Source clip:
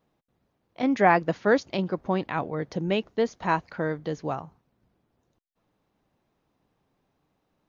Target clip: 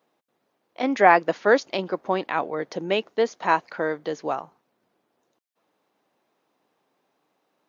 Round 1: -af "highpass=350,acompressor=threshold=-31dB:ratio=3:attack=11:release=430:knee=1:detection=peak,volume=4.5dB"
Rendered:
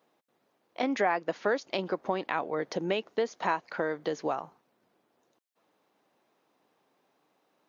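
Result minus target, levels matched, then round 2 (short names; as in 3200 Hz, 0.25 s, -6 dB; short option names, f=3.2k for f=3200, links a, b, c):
compressor: peak gain reduction +13 dB
-af "highpass=350,volume=4.5dB"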